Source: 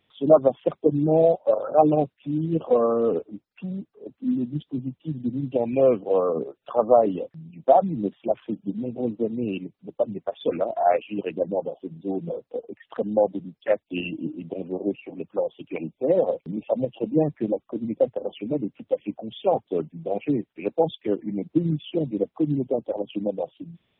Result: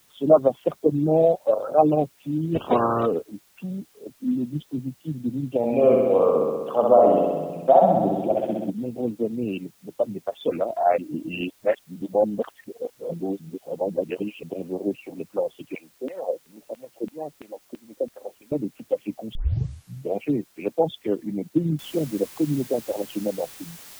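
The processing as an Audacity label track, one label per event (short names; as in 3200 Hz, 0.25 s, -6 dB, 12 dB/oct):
2.540000	3.050000	spectral limiter ceiling under each frame's peak by 24 dB
5.570000	8.700000	flutter echo walls apart 11 m, dies away in 1.4 s
10.980000	14.430000	reverse
15.750000	18.520000	LFO band-pass saw down 3 Hz 230–2800 Hz
19.350000	19.350000	tape start 0.81 s
21.790000	21.790000	noise floor step -60 dB -44 dB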